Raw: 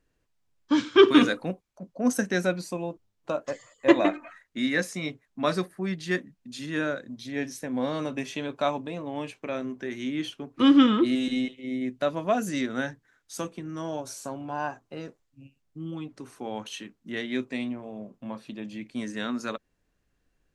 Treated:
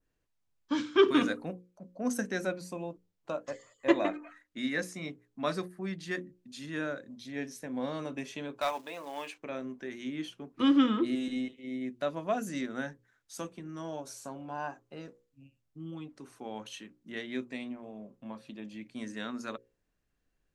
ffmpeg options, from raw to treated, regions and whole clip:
ffmpeg -i in.wav -filter_complex "[0:a]asettb=1/sr,asplit=3[link_01][link_02][link_03];[link_01]atrim=end=8.614[link_04];[link_02]atrim=start=8.61:end=9.38,asetpts=PTS-STARTPTS,afade=type=in:duration=0.004:curve=qsin,afade=type=out:start_time=0.766:duration=0.004:curve=qsin,acrusher=bits=6:mode=log:mix=0:aa=0.000001,highpass=frequency=620:poles=1,asplit=2[link_05][link_06];[link_06]highpass=frequency=720:poles=1,volume=13dB,asoftclip=type=tanh:threshold=-14.5dB[link_07];[link_05][link_07]amix=inputs=2:normalize=0,lowpass=frequency=6600:poles=1,volume=-6dB[link_08];[link_03]atrim=start=9.376[link_09];[link_04][link_08]acrossfade=duration=0.004:curve1=hsin:curve2=qsin[link_10];[link_10][link_09]acrossfade=duration=0.004:curve1=qsin:curve2=hsin,bandreject=frequency=60:width_type=h:width=6,bandreject=frequency=120:width_type=h:width=6,bandreject=frequency=180:width_type=h:width=6,bandreject=frequency=240:width_type=h:width=6,bandreject=frequency=300:width_type=h:width=6,bandreject=frequency=360:width_type=h:width=6,bandreject=frequency=420:width_type=h:width=6,bandreject=frequency=480:width_type=h:width=6,bandreject=frequency=540:width_type=h:width=6,adynamicequalizer=threshold=0.00631:dfrequency=3500:dqfactor=0.99:tfrequency=3500:tqfactor=0.99:attack=5:release=100:ratio=0.375:range=2.5:mode=cutabove:tftype=bell,volume=-6dB" out.wav

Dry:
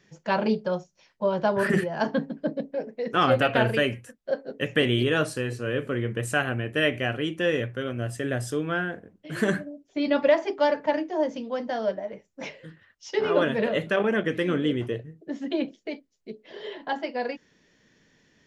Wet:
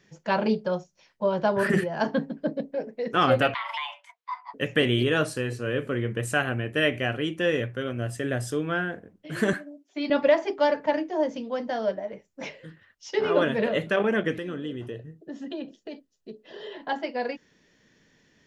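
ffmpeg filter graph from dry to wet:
ffmpeg -i in.wav -filter_complex "[0:a]asettb=1/sr,asplit=3[link_01][link_02][link_03];[link_01]atrim=end=3.544[link_04];[link_02]atrim=start=3.54:end=4.54,asetpts=PTS-STARTPTS,afade=type=in:duration=0.004:curve=qsin,afade=type=out:start_time=0.996:duration=0.004:curve=qsin,acrossover=split=450 5100:gain=0.0794 1 0.0794[link_05][link_06][link_07];[link_05][link_06][link_07]amix=inputs=3:normalize=0,acompressor=threshold=-27dB:ratio=10:attack=3.2:release=140:knee=1:detection=peak,afreqshift=460[link_08];[link_03]atrim=start=4.536[link_09];[link_04][link_08]acrossfade=duration=0.004:curve1=hsin:curve2=qsin[link_10];[link_10][link_09]acrossfade=duration=0.004:curve1=qsin:curve2=hsin,asettb=1/sr,asplit=3[link_11][link_12][link_13];[link_11]atrim=end=9.534[link_14];[link_12]atrim=start=9.53:end=10.1,asetpts=PTS-STARTPTS,afade=type=in:duration=0.004:curve=qsin,afade=type=out:start_time=0.566:duration=0.004:curve=qsin,highpass=frequency=270:width=0.5412,highpass=frequency=270:width=1.3066,equalizer=frequency=470:width=2.5:gain=-11[link_15];[link_13]atrim=start=10.096[link_16];[link_14][link_15]acrossfade=duration=0.004:curve1=hsin:curve2=qsin[link_17];[link_17][link_16]acrossfade=duration=0.004:curve1=qsin:curve2=hsin,asettb=1/sr,asplit=3[link_18][link_19][link_20];[link_18]atrim=end=14.384[link_21];[link_19]atrim=start=14.38:end=16.75,asetpts=PTS-STARTPTS,afade=type=in:duration=0.004:curve=qsin,afade=type=out:start_time=2.366:duration=0.004:curve=qsin,acompressor=threshold=-36dB:ratio=2:attack=3.2:release=140:knee=1:detection=peak,asuperstop=centerf=2200:order=4:qfactor=6.5[link_22];[link_20]atrim=start=16.746[link_23];[link_21][link_22]acrossfade=duration=0.004:curve1=hsin:curve2=qsin[link_24];[link_24][link_23]acrossfade=duration=0.004:curve1=qsin:curve2=hsin" out.wav

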